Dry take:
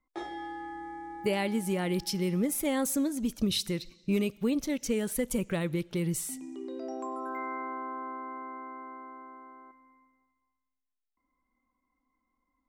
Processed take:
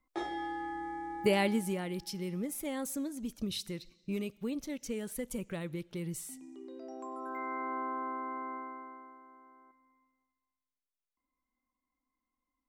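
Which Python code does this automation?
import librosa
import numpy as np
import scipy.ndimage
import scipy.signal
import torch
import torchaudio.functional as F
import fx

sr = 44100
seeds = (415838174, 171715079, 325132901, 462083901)

y = fx.gain(x, sr, db=fx.line((1.45, 1.5), (1.9, -8.0), (6.88, -8.0), (7.78, 1.0), (8.54, 1.0), (9.21, -9.0)))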